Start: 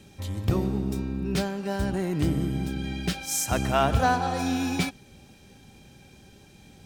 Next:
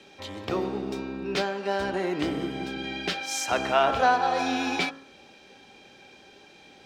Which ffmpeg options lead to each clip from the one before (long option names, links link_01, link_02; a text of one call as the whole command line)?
ffmpeg -i in.wav -filter_complex "[0:a]acrossover=split=310 5300:gain=0.0794 1 0.1[link_01][link_02][link_03];[link_01][link_02][link_03]amix=inputs=3:normalize=0,bandreject=frequency=54.38:width_type=h:width=4,bandreject=frequency=108.76:width_type=h:width=4,bandreject=frequency=163.14:width_type=h:width=4,bandreject=frequency=217.52:width_type=h:width=4,bandreject=frequency=271.9:width_type=h:width=4,bandreject=frequency=326.28:width_type=h:width=4,bandreject=frequency=380.66:width_type=h:width=4,bandreject=frequency=435.04:width_type=h:width=4,bandreject=frequency=489.42:width_type=h:width=4,bandreject=frequency=543.8:width_type=h:width=4,bandreject=frequency=598.18:width_type=h:width=4,bandreject=frequency=652.56:width_type=h:width=4,bandreject=frequency=706.94:width_type=h:width=4,bandreject=frequency=761.32:width_type=h:width=4,bandreject=frequency=815.7:width_type=h:width=4,bandreject=frequency=870.08:width_type=h:width=4,bandreject=frequency=924.46:width_type=h:width=4,bandreject=frequency=978.84:width_type=h:width=4,bandreject=frequency=1033.22:width_type=h:width=4,bandreject=frequency=1087.6:width_type=h:width=4,bandreject=frequency=1141.98:width_type=h:width=4,bandreject=frequency=1196.36:width_type=h:width=4,bandreject=frequency=1250.74:width_type=h:width=4,bandreject=frequency=1305.12:width_type=h:width=4,bandreject=frequency=1359.5:width_type=h:width=4,bandreject=frequency=1413.88:width_type=h:width=4,bandreject=frequency=1468.26:width_type=h:width=4,bandreject=frequency=1522.64:width_type=h:width=4,bandreject=frequency=1577.02:width_type=h:width=4,bandreject=frequency=1631.4:width_type=h:width=4,bandreject=frequency=1685.78:width_type=h:width=4,bandreject=frequency=1740.16:width_type=h:width=4,bandreject=frequency=1794.54:width_type=h:width=4,bandreject=frequency=1848.92:width_type=h:width=4,bandreject=frequency=1903.3:width_type=h:width=4,bandreject=frequency=1957.68:width_type=h:width=4,asplit=2[link_04][link_05];[link_05]alimiter=limit=-22dB:level=0:latency=1:release=371,volume=0dB[link_06];[link_04][link_06]amix=inputs=2:normalize=0" out.wav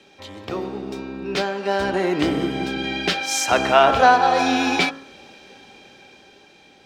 ffmpeg -i in.wav -af "dynaudnorm=framelen=380:gausssize=9:maxgain=11.5dB" out.wav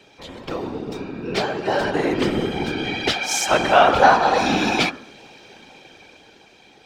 ffmpeg -i in.wav -af "afftfilt=real='hypot(re,im)*cos(2*PI*random(0))':imag='hypot(re,im)*sin(2*PI*random(1))':win_size=512:overlap=0.75,volume=6.5dB" out.wav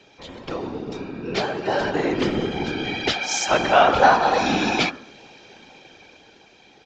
ffmpeg -i in.wav -af "aresample=16000,aresample=44100,volume=-1.5dB" out.wav